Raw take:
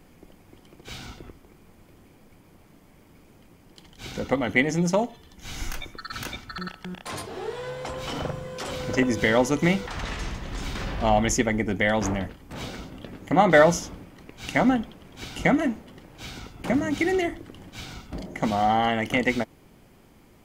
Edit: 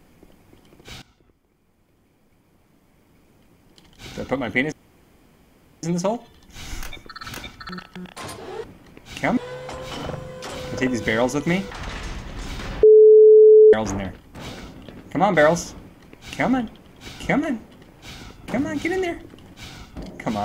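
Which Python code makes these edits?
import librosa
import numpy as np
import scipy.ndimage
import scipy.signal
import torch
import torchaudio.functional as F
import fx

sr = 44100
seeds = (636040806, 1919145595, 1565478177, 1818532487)

y = fx.edit(x, sr, fx.fade_in_from(start_s=1.02, length_s=3.15, floor_db=-18.5),
    fx.insert_room_tone(at_s=4.72, length_s=1.11),
    fx.bleep(start_s=10.99, length_s=0.9, hz=432.0, db=-6.0),
    fx.duplicate(start_s=13.96, length_s=0.73, to_s=7.53), tone=tone)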